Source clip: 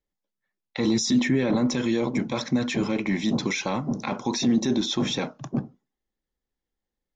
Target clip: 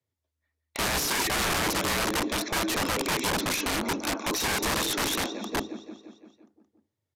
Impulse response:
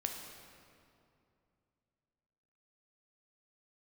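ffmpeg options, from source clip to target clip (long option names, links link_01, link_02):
-af "aecho=1:1:172|344|516|688|860|1032|1204:0.251|0.148|0.0874|0.0516|0.0304|0.018|0.0106,afreqshift=78,aeval=exprs='(mod(11.9*val(0)+1,2)-1)/11.9':channel_layout=same,aresample=32000,aresample=44100"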